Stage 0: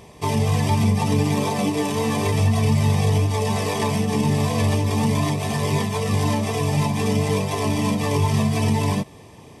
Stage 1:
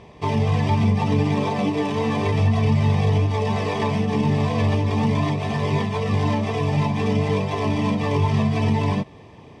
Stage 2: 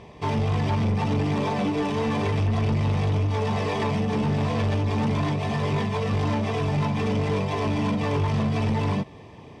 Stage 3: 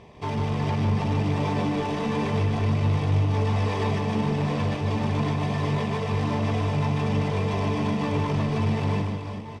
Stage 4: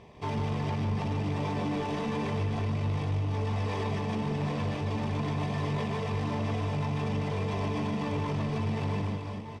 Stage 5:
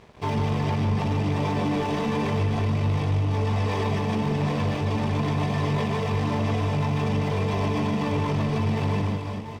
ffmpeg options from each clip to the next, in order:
ffmpeg -i in.wav -af "lowpass=3600" out.wav
ffmpeg -i in.wav -af "asoftclip=type=tanh:threshold=-19dB" out.wav
ffmpeg -i in.wav -af "aecho=1:1:150|375|712.5|1219|1978:0.631|0.398|0.251|0.158|0.1,volume=-3.5dB" out.wav
ffmpeg -i in.wav -af "alimiter=limit=-20.5dB:level=0:latency=1:release=22,volume=-3.5dB" out.wav
ffmpeg -i in.wav -af "aeval=exprs='sgn(val(0))*max(abs(val(0))-0.00168,0)':channel_layout=same,volume=6.5dB" out.wav

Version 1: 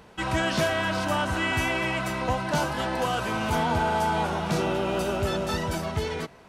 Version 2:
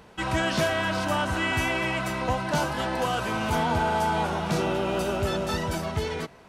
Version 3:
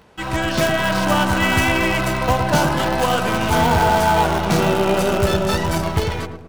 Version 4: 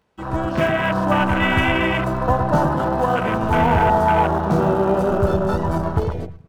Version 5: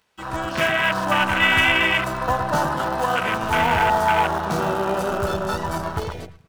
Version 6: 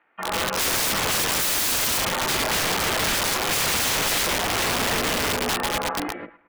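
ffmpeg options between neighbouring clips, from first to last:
ffmpeg -i in.wav -af anull out.wav
ffmpeg -i in.wav -filter_complex "[0:a]dynaudnorm=framelen=470:gausssize=3:maxgain=4.5dB,asplit=2[link_01][link_02];[link_02]acrusher=bits=4:dc=4:mix=0:aa=0.000001,volume=-5.5dB[link_03];[link_01][link_03]amix=inputs=2:normalize=0,asplit=2[link_04][link_05];[link_05]adelay=109,lowpass=frequency=840:poles=1,volume=-4.5dB,asplit=2[link_06][link_07];[link_07]adelay=109,lowpass=frequency=840:poles=1,volume=0.47,asplit=2[link_08][link_09];[link_09]adelay=109,lowpass=frequency=840:poles=1,volume=0.47,asplit=2[link_10][link_11];[link_11]adelay=109,lowpass=frequency=840:poles=1,volume=0.47,asplit=2[link_12][link_13];[link_13]adelay=109,lowpass=frequency=840:poles=1,volume=0.47,asplit=2[link_14][link_15];[link_15]adelay=109,lowpass=frequency=840:poles=1,volume=0.47[link_16];[link_04][link_06][link_08][link_10][link_12][link_14][link_16]amix=inputs=7:normalize=0" out.wav
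ffmpeg -i in.wav -af "afwtdn=0.0891" out.wav
ffmpeg -i in.wav -af "tiltshelf=frequency=1100:gain=-8.5" out.wav
ffmpeg -i in.wav -af "crystalizer=i=8:c=0,highpass=frequency=340:width_type=q:width=0.5412,highpass=frequency=340:width_type=q:width=1.307,lowpass=frequency=2200:width_type=q:width=0.5176,lowpass=frequency=2200:width_type=q:width=0.7071,lowpass=frequency=2200:width_type=q:width=1.932,afreqshift=-140,aeval=exprs='(mod(7.94*val(0)+1,2)-1)/7.94':channel_layout=same" out.wav

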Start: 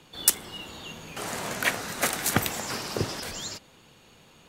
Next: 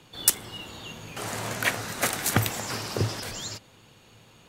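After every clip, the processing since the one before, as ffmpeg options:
ffmpeg -i in.wav -af "equalizer=frequency=110:width=7.4:gain=12.5" out.wav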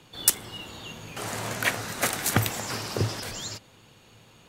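ffmpeg -i in.wav -af anull out.wav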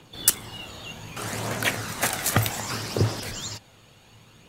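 ffmpeg -i in.wav -af "aphaser=in_gain=1:out_gain=1:delay=1.7:decay=0.31:speed=0.65:type=triangular,volume=1dB" out.wav

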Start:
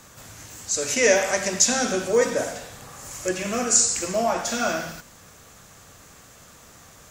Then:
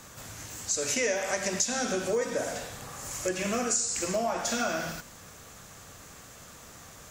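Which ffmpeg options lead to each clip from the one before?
ffmpeg -i in.wav -af "acompressor=threshold=-26dB:ratio=5" out.wav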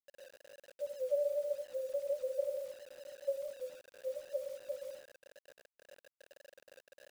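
ffmpeg -i in.wav -af "asoftclip=type=hard:threshold=-30.5dB,asuperpass=centerf=550:order=20:qfactor=6.2,acrusher=bits=9:mix=0:aa=0.000001,volume=4dB" out.wav

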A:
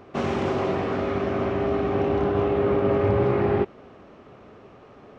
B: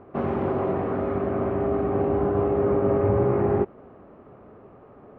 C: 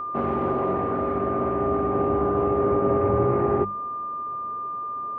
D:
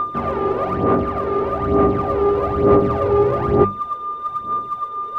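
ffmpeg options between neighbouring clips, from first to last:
ffmpeg -i in.wav -af "lowpass=1300" out.wav
ffmpeg -i in.wav -af "aeval=exprs='val(0)+0.0398*sin(2*PI*1200*n/s)':channel_layout=same,bandreject=frequency=50:width_type=h:width=6,bandreject=frequency=100:width_type=h:width=6,bandreject=frequency=150:width_type=h:width=6,bandreject=frequency=200:width_type=h:width=6" out.wav
ffmpeg -i in.wav -filter_complex "[0:a]asplit=2[link_01][link_02];[link_02]asoftclip=type=tanh:threshold=-26.5dB,volume=-4dB[link_03];[link_01][link_03]amix=inputs=2:normalize=0,aphaser=in_gain=1:out_gain=1:delay=2.4:decay=0.62:speed=1.1:type=sinusoidal" out.wav

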